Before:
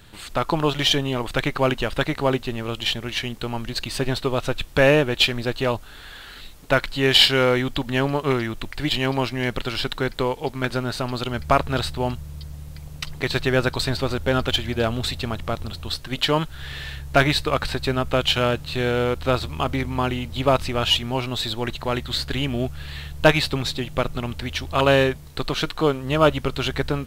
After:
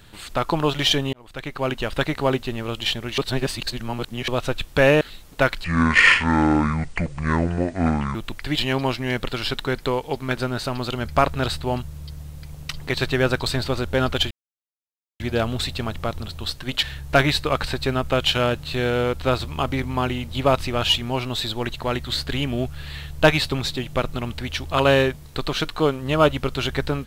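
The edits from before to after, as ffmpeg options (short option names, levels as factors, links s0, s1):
-filter_complex "[0:a]asplit=9[s0][s1][s2][s3][s4][s5][s6][s7][s8];[s0]atrim=end=1.13,asetpts=PTS-STARTPTS,afade=t=out:st=1.126:d=0.004:c=hsin[s9];[s1]atrim=start=1.13:end=3.182,asetpts=PTS-STARTPTS,afade=t=in:d=0.85[s10];[s2]atrim=start=3.178:end=4.282,asetpts=PTS-STARTPTS,areverse[s11];[s3]atrim=start=4.278:end=5.012[s12];[s4]atrim=start=6.318:end=6.954[s13];[s5]atrim=start=6.95:end=8.48,asetpts=PTS-STARTPTS,asetrate=26901,aresample=44100,atrim=end_sample=110611,asetpts=PTS-STARTPTS[s14];[s6]atrim=start=8.476:end=14.64,asetpts=PTS-STARTPTS,afade=t=out:st=6.16:d=0.004:c=hsin,apad=pad_dur=0.89[s15];[s7]atrim=start=14.64:end=16.272,asetpts=PTS-STARTPTS,afade=t=in:d=0.004:c=hsin[s16];[s8]atrim=start=16.838[s17];[s9][s10]concat=n=2:v=0:a=1[s18];[s18][s11]acrossfade=d=0.004:c1=hsin:c2=hsin[s19];[s19][s12]acrossfade=d=0.004:c1=hsin:c2=hsin[s20];[s20][s13]acrossfade=d=0.004:c1=hsin:c2=hsin[s21];[s21][s14]acrossfade=d=0.004:c1=hsin:c2=hsin[s22];[s15][s16]concat=n=2:v=0:a=1[s23];[s22][s23]acrossfade=d=0.004:c1=hsin:c2=hsin[s24];[s24][s17]acrossfade=d=0.004:c1=hsin:c2=hsin"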